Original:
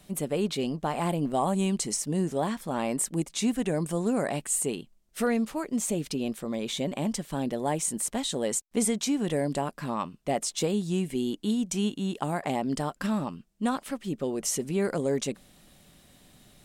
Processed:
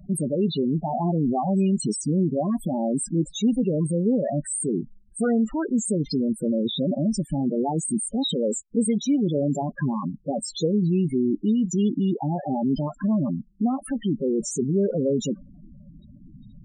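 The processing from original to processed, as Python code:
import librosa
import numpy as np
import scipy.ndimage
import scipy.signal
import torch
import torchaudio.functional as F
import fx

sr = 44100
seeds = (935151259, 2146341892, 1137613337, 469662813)

p1 = fx.over_compress(x, sr, threshold_db=-34.0, ratio=-0.5)
p2 = x + F.gain(torch.from_numpy(p1), -2.0).numpy()
p3 = 10.0 ** (-12.0 / 20.0) * np.tanh(p2 / 10.0 ** (-12.0 / 20.0))
p4 = fx.spec_topn(p3, sr, count=8)
p5 = fx.notch_cascade(p4, sr, direction='rising', hz=0.46)
y = F.gain(torch.from_numpy(p5), 5.5).numpy()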